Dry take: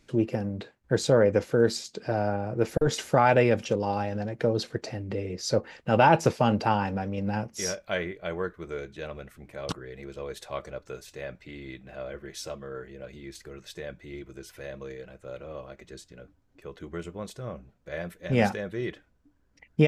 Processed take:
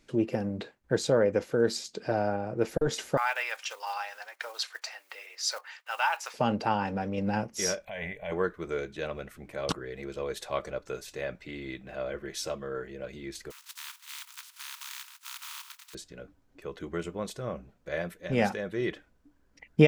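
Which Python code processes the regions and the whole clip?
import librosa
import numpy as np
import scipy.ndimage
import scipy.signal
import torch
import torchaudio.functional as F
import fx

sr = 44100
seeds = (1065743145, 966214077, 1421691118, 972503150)

y = fx.chain(x, sr, fx.block_float(bits=7),
    fx.highpass(hz=990.0, slope=24), at=(3.17, 6.34))
y = fx.chain(y, sr, fx.over_compress(threshold_db=-31.0, ratio=-0.5),
    fx.transient(attack_db=-8, sustain_db=3),
    fx.fixed_phaser(hz=1300.0, stages=6), at=(7.85, 8.32))
y = fx.spec_flatten(y, sr, power=0.17, at=(13.5, 15.93), fade=0.02)
y = fx.cheby_ripple_highpass(y, sr, hz=910.0, ripple_db=3, at=(13.5, 15.93), fade=0.02)
y = fx.level_steps(y, sr, step_db=9, at=(13.5, 15.93), fade=0.02)
y = fx.peak_eq(y, sr, hz=92.0, db=-6.0, octaves=1.4)
y = fx.rider(y, sr, range_db=3, speed_s=0.5)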